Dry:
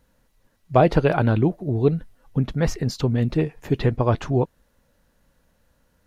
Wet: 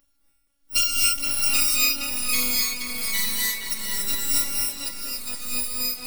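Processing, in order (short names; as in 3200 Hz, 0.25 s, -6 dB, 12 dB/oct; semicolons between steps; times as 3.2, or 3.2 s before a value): FFT order left unsorted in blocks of 256 samples; robotiser 279 Hz; tremolo 1.4 Hz, depth 94%; in parallel at -4 dB: overloaded stage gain 7 dB; 1.64–3.59 on the sum: auto swell 0.341 s; echoes that change speed 0.69 s, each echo -2 st, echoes 3; on a send: tape echo 0.47 s, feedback 50%, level -3.5 dB, low-pass 3700 Hz; on the sum: non-linear reverb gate 0.31 s rising, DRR -3.5 dB; gain -6.5 dB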